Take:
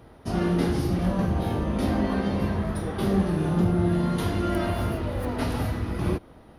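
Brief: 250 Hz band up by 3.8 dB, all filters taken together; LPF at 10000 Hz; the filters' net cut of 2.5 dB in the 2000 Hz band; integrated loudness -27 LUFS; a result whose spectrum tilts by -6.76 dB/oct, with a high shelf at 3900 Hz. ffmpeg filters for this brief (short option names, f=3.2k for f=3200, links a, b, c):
-af "lowpass=10k,equalizer=f=250:t=o:g=5.5,equalizer=f=2k:t=o:g=-5,highshelf=f=3.9k:g=7,volume=-3.5dB"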